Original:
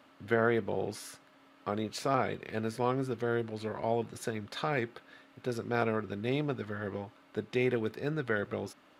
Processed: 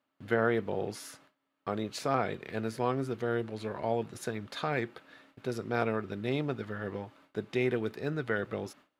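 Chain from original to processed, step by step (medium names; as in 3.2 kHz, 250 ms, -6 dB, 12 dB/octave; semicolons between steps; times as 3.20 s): gate with hold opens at -47 dBFS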